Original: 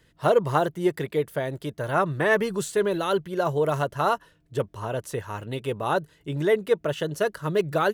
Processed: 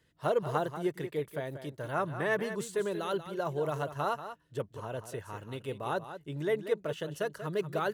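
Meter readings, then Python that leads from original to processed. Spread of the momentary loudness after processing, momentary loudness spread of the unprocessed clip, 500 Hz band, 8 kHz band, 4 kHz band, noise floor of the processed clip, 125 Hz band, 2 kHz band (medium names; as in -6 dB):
9 LU, 9 LU, -8.5 dB, -8.5 dB, -8.5 dB, -63 dBFS, -8.5 dB, -8.5 dB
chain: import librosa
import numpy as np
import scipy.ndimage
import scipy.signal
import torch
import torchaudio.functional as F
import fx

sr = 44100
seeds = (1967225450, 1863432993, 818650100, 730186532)

y = scipy.signal.sosfilt(scipy.signal.butter(2, 49.0, 'highpass', fs=sr, output='sos'), x)
y = y + 10.0 ** (-11.0 / 20.0) * np.pad(y, (int(187 * sr / 1000.0), 0))[:len(y)]
y = y * 10.0 ** (-9.0 / 20.0)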